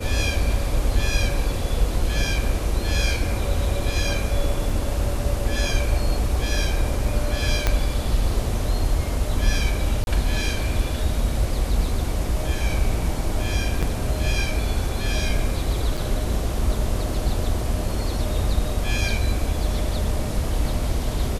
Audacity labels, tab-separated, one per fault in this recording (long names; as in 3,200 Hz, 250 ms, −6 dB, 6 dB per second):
4.700000	4.700000	drop-out 2.7 ms
7.670000	7.670000	click −5 dBFS
10.040000	10.070000	drop-out 31 ms
13.820000	13.830000	drop-out 6.3 ms
15.970000	15.980000	drop-out 5.4 ms